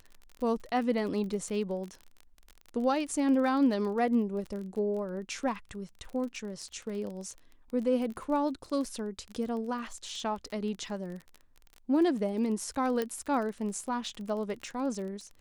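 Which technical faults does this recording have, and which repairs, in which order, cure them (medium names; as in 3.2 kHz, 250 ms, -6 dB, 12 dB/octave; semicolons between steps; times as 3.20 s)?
crackle 31 per s -37 dBFS
13.02 s: pop -18 dBFS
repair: de-click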